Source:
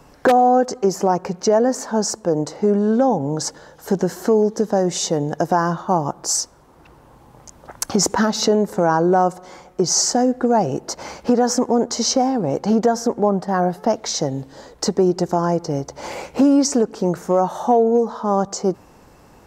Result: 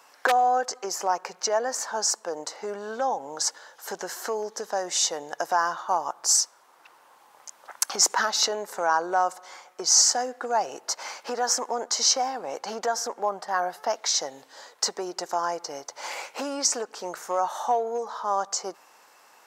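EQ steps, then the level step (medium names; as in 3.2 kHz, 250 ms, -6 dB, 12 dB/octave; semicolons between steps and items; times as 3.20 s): high-pass 990 Hz 12 dB/octave; 0.0 dB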